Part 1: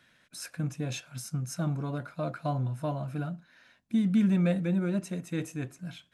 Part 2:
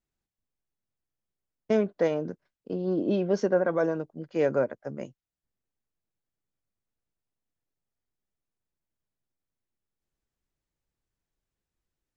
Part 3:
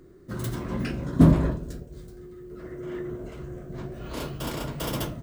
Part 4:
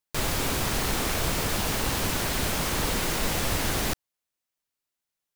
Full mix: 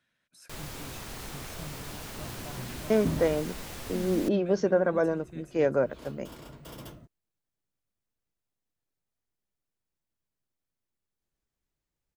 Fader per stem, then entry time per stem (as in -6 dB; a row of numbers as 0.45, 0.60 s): -14.0, 0.0, -14.5, -14.0 dB; 0.00, 1.20, 1.85, 0.35 s